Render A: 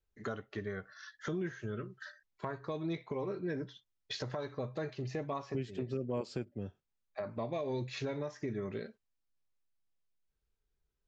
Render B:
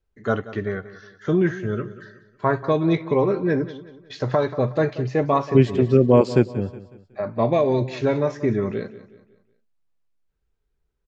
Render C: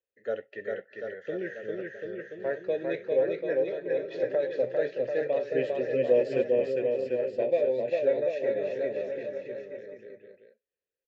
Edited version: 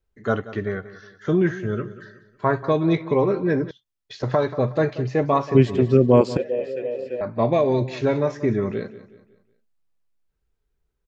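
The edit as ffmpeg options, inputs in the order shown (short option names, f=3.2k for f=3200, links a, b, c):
-filter_complex "[1:a]asplit=3[a][b][c];[a]atrim=end=3.712[d];[0:a]atrim=start=3.708:end=4.232[e];[b]atrim=start=4.228:end=6.372[f];[2:a]atrim=start=6.368:end=7.212[g];[c]atrim=start=7.208[h];[d][e]acrossfade=d=0.004:c1=hsin:c2=hsin[i];[i][f]acrossfade=d=0.004:c1=hsin:c2=hsin[j];[j][g]acrossfade=d=0.004:c1=hsin:c2=hsin[k];[k][h]acrossfade=d=0.004:c1=hsin:c2=hsin"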